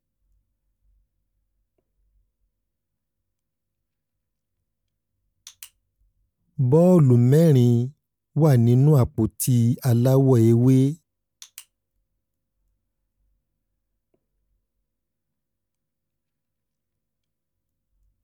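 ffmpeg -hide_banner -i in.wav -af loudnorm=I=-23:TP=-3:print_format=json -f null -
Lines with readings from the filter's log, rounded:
"input_i" : "-18.3",
"input_tp" : "-5.9",
"input_lra" : "3.8",
"input_thresh" : "-29.9",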